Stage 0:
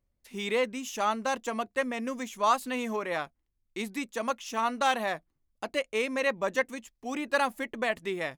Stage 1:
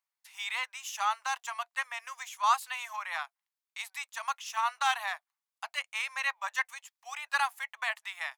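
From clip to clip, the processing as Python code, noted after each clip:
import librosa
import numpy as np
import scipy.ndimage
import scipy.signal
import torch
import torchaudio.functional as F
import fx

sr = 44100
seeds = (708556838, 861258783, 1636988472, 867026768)

y = scipy.signal.sosfilt(scipy.signal.butter(8, 810.0, 'highpass', fs=sr, output='sos'), x)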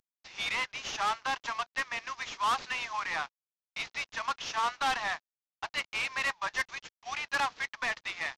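y = fx.cvsd(x, sr, bps=32000)
y = 10.0 ** (-29.5 / 20.0) * np.tanh(y / 10.0 ** (-29.5 / 20.0))
y = y * librosa.db_to_amplitude(5.0)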